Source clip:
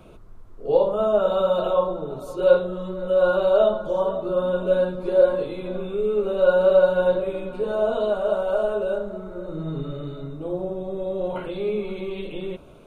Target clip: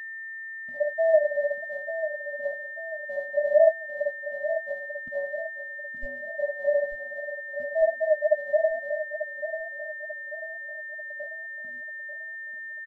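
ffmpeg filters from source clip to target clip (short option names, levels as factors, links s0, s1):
-filter_complex "[0:a]afftfilt=real='re*gte(hypot(re,im),0.708)':imag='im*gte(hypot(re,im),0.708)':win_size=1024:overlap=0.75,agate=range=0.0126:threshold=0.00794:ratio=16:detection=peak,alimiter=limit=0.251:level=0:latency=1:release=189,asuperstop=centerf=910:order=8:qfactor=1.4,aexciter=amount=10.2:drive=7.1:freq=2400,aeval=exprs='val(0)+0.0112*sin(2*PI*1800*n/s)':c=same,asplit=2[s0][s1];[s1]adelay=12,volume=0.251[s2];[s0][s2]amix=inputs=2:normalize=0,asplit=2[s3][s4];[s4]aecho=0:1:891|1782|2673|3564|4455:0.299|0.128|0.0552|0.0237|0.0102[s5];[s3][s5]amix=inputs=2:normalize=0,afftfilt=real='re*eq(mod(floor(b*sr/1024/280),2),0)':imag='im*eq(mod(floor(b*sr/1024/280),2),0)':win_size=1024:overlap=0.75,volume=2"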